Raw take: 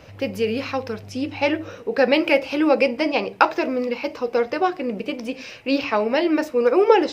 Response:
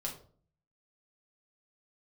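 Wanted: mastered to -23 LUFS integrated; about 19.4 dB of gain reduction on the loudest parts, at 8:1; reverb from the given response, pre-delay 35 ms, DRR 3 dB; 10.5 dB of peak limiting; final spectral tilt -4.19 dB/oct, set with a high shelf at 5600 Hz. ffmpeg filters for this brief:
-filter_complex "[0:a]highshelf=f=5.6k:g=-5.5,acompressor=threshold=-31dB:ratio=8,alimiter=level_in=2.5dB:limit=-24dB:level=0:latency=1,volume=-2.5dB,asplit=2[a][b];[1:a]atrim=start_sample=2205,adelay=35[c];[b][c]afir=irnorm=-1:irlink=0,volume=-3.5dB[d];[a][d]amix=inputs=2:normalize=0,volume=11.5dB"

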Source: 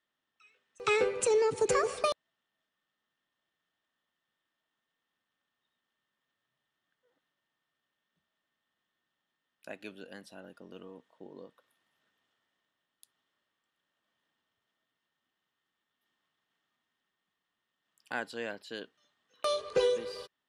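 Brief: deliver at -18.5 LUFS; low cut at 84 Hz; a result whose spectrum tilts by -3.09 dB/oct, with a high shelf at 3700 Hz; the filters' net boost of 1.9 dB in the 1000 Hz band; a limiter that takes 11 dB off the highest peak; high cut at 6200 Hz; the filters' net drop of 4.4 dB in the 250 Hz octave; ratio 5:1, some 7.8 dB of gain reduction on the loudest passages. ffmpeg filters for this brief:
-af "highpass=84,lowpass=6.2k,equalizer=f=250:t=o:g=-8,equalizer=f=1k:t=o:g=3.5,highshelf=f=3.7k:g=-7.5,acompressor=threshold=-33dB:ratio=5,volume=25.5dB,alimiter=limit=-6.5dB:level=0:latency=1"

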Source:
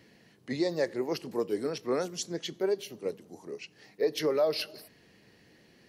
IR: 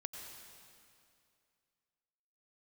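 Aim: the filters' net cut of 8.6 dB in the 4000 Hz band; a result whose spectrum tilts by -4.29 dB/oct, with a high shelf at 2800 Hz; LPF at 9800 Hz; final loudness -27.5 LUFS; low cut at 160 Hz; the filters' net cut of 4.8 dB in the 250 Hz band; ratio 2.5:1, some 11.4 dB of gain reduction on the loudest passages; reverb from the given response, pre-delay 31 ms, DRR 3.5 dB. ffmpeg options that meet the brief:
-filter_complex "[0:a]highpass=160,lowpass=9.8k,equalizer=f=250:t=o:g=-7,highshelf=f=2.8k:g=-6,equalizer=f=4k:t=o:g=-6,acompressor=threshold=-42dB:ratio=2.5,asplit=2[a][b];[1:a]atrim=start_sample=2205,adelay=31[c];[b][c]afir=irnorm=-1:irlink=0,volume=-1.5dB[d];[a][d]amix=inputs=2:normalize=0,volume=15dB"

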